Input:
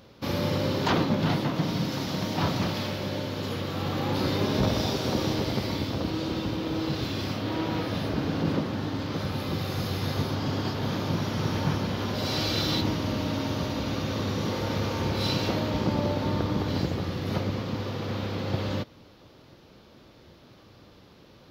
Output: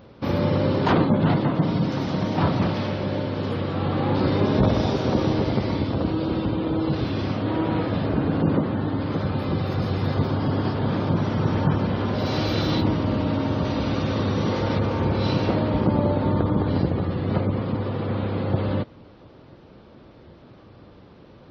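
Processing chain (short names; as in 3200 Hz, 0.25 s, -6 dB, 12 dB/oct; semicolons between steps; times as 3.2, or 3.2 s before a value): spectral gate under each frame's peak -30 dB strong; bell 7500 Hz -12.5 dB 2.6 oct, from 13.65 s -6.5 dB, from 14.79 s -14 dB; gain +6 dB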